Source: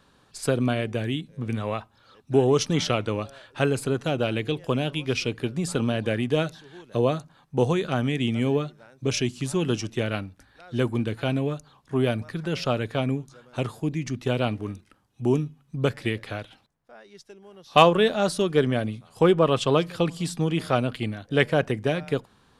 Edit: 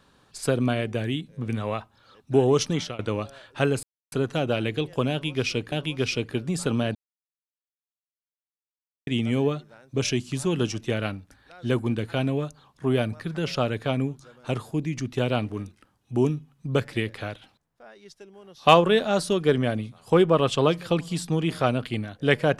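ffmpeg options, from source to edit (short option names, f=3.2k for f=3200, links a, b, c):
-filter_complex "[0:a]asplit=6[a][b][c][d][e][f];[a]atrim=end=2.99,asetpts=PTS-STARTPTS,afade=t=out:st=2.66:d=0.33:silence=0.0891251[g];[b]atrim=start=2.99:end=3.83,asetpts=PTS-STARTPTS,afade=t=in:d=0.004:c=hsin:silence=0.0891251,afade=t=out:st=0.836:d=0.004:c=hsin,apad=pad_dur=0.29[h];[c]atrim=start=3.83:end=5.432,asetpts=PTS-STARTPTS,afade=t=in:d=0.004:c=hsin[i];[d]atrim=start=4.808:end=6.04,asetpts=PTS-STARTPTS,afade=t=out:st=1.228:d=0.004:c=hsin[j];[e]atrim=start=6.04:end=8.16,asetpts=PTS-STARTPTS,volume=0[k];[f]atrim=start=8.16,asetpts=PTS-STARTPTS,afade=t=in:d=0.004:c=hsin[l];[g][h][i]concat=n=3:v=0:a=1[m];[j][k][l]concat=n=3:v=0:a=1[n];[m][n]acrossfade=d=0.004:c1=hsin:c2=hsin"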